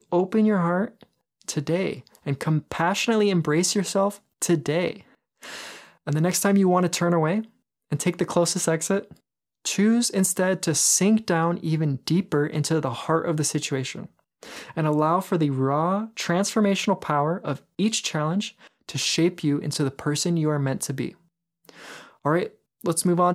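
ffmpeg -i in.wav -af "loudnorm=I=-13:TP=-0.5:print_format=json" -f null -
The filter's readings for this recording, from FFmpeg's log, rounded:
"input_i" : "-23.8",
"input_tp" : "-6.2",
"input_lra" : "3.9",
"input_thresh" : "-34.5",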